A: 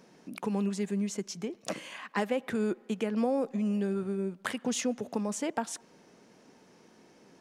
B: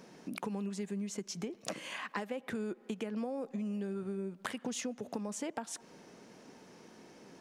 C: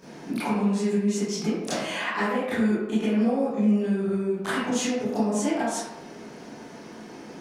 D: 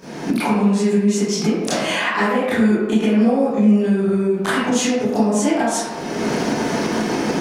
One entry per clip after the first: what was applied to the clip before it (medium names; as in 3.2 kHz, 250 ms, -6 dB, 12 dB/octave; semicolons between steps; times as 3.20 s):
compression 5:1, threshold -39 dBFS, peak gain reduction 13.5 dB; trim +3 dB
reverberation RT60 0.90 s, pre-delay 21 ms, DRR -13 dB
recorder AGC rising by 26 dB/s; trim +7.5 dB